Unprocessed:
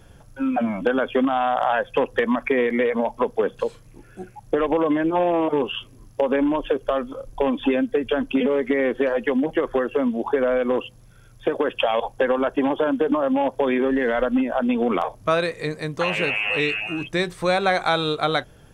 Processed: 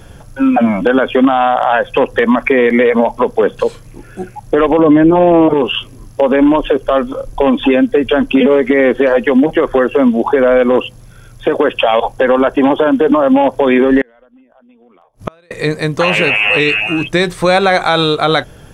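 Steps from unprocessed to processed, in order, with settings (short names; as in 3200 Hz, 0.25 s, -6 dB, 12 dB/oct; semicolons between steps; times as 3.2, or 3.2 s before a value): 4.79–5.54 low shelf 440 Hz +11.5 dB; 14.01–15.51 flipped gate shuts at -17 dBFS, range -38 dB; maximiser +13 dB; gain -1 dB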